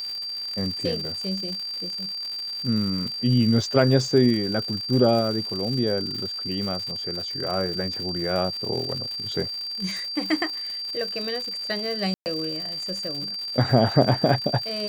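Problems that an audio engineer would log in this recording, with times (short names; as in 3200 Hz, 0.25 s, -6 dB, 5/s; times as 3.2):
crackle 170/s -30 dBFS
tone 4700 Hz -29 dBFS
12.14–12.26 gap 0.119 s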